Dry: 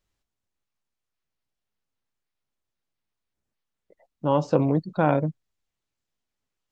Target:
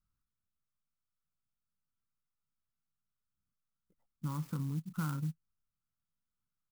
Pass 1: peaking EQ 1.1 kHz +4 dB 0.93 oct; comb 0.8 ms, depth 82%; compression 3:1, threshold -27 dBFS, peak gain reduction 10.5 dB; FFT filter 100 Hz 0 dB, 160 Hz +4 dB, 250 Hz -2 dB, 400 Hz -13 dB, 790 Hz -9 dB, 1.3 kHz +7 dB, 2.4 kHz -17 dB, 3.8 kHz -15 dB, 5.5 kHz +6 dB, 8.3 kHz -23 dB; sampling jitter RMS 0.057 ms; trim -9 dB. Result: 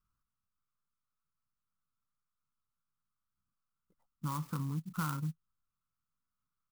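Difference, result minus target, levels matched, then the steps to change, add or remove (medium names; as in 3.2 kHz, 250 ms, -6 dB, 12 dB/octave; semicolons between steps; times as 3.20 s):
1 kHz band +5.5 dB
change: peaking EQ 1.1 kHz -5 dB 0.93 oct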